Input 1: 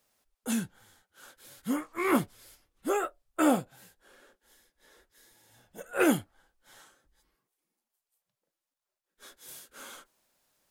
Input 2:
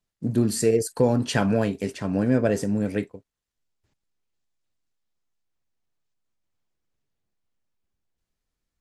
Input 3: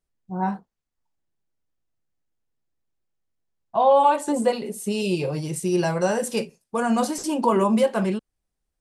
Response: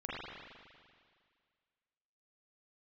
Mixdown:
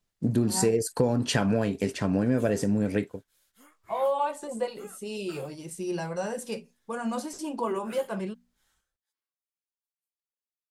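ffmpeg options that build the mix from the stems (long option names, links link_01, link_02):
-filter_complex "[0:a]highpass=frequency=1500:poles=1,adelay=1900,volume=-16dB[link_01];[1:a]acompressor=threshold=-25dB:ratio=3,volume=3dB[link_02];[2:a]bandreject=frequency=60:width_type=h:width=6,bandreject=frequency=120:width_type=h:width=6,bandreject=frequency=180:width_type=h:width=6,bandreject=frequency=240:width_type=h:width=6,flanger=delay=1.5:depth=2.9:regen=-68:speed=0.24:shape=triangular,adelay=150,volume=-5dB[link_03];[link_01][link_02][link_03]amix=inputs=3:normalize=0"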